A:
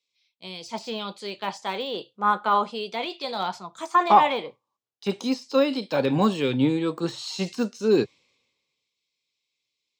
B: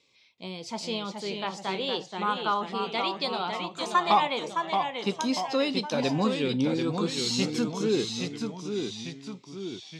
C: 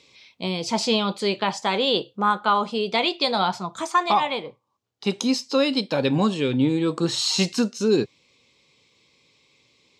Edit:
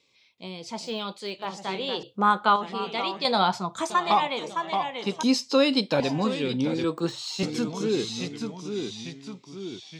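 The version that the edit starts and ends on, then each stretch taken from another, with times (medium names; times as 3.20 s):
B
0.86–1.43 s: from A, crossfade 0.10 s
2.03–2.56 s: from C
3.25–3.90 s: from C
5.23–6.00 s: from C
6.84–7.43 s: from A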